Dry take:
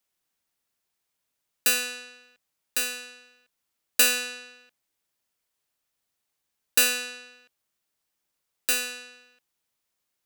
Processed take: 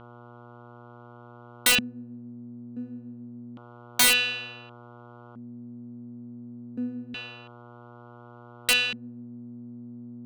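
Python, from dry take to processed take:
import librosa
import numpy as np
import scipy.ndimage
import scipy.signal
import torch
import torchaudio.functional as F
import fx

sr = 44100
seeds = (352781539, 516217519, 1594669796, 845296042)

y = fx.dmg_buzz(x, sr, base_hz=120.0, harmonics=12, level_db=-48.0, tilt_db=-3, odd_only=False)
y = fx.filter_lfo_lowpass(y, sr, shape='square', hz=0.28, low_hz=230.0, high_hz=3200.0, q=5.5)
y = (np.mod(10.0 ** (11.5 / 20.0) * y + 1.0, 2.0) - 1.0) / 10.0 ** (11.5 / 20.0)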